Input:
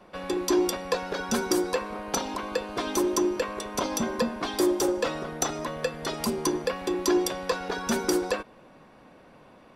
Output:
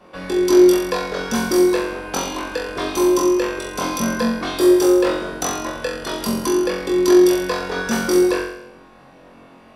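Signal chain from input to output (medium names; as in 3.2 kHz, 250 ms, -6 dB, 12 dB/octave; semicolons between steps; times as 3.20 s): dynamic bell 6.8 kHz, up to -6 dB, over -49 dBFS, Q 2.5; on a send: flutter echo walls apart 3.8 m, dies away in 0.72 s; on the sum: trim +2.5 dB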